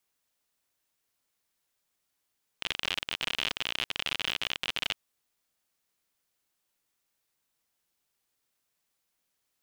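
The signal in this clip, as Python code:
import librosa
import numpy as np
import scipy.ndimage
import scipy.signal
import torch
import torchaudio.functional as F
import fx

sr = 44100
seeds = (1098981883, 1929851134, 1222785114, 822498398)

y = fx.geiger_clicks(sr, seeds[0], length_s=2.31, per_s=58.0, level_db=-13.5)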